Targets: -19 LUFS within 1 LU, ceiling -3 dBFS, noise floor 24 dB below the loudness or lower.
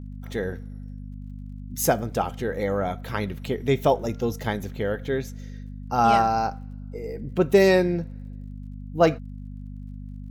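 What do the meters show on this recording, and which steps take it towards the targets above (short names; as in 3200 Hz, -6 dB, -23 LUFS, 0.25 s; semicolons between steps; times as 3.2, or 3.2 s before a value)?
ticks 35/s; hum 50 Hz; harmonics up to 250 Hz; hum level -34 dBFS; loudness -24.5 LUFS; peak -6.5 dBFS; loudness target -19.0 LUFS
-> de-click; de-hum 50 Hz, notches 5; gain +5.5 dB; limiter -3 dBFS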